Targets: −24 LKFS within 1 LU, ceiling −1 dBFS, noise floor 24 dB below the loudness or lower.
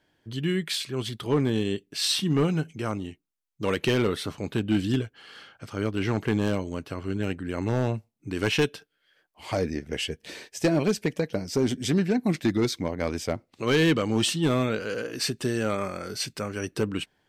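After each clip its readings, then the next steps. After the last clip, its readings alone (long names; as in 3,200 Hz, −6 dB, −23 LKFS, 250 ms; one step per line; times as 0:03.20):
share of clipped samples 0.7%; peaks flattened at −16.0 dBFS; integrated loudness −27.5 LKFS; sample peak −16.0 dBFS; target loudness −24.0 LKFS
→ clipped peaks rebuilt −16 dBFS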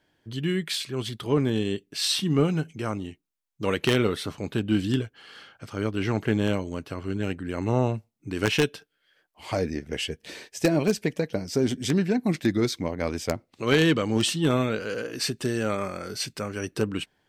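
share of clipped samples 0.0%; integrated loudness −27.0 LKFS; sample peak −7.0 dBFS; target loudness −24.0 LKFS
→ level +3 dB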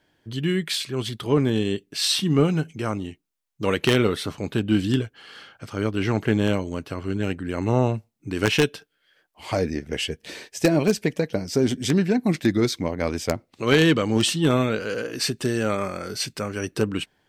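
integrated loudness −24.0 LKFS; sample peak −4.0 dBFS; background noise floor −72 dBFS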